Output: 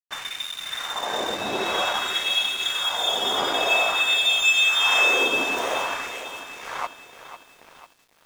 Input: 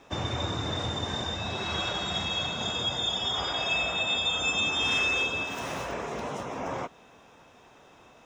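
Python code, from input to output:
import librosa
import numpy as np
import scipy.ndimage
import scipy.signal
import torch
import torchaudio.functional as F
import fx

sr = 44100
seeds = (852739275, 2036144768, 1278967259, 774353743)

p1 = fx.peak_eq(x, sr, hz=4600.0, db=-8.5, octaves=0.57)
p2 = p1 + fx.echo_single(p1, sr, ms=950, db=-18.0, dry=0)
p3 = fx.filter_lfo_highpass(p2, sr, shape='sine', hz=0.51, low_hz=300.0, high_hz=2700.0, q=1.4)
p4 = np.sign(p3) * np.maximum(np.abs(p3) - 10.0 ** (-44.0 / 20.0), 0.0)
p5 = fx.echo_crushed(p4, sr, ms=498, feedback_pct=55, bits=9, wet_db=-12.0)
y = F.gain(torch.from_numpy(p5), 9.0).numpy()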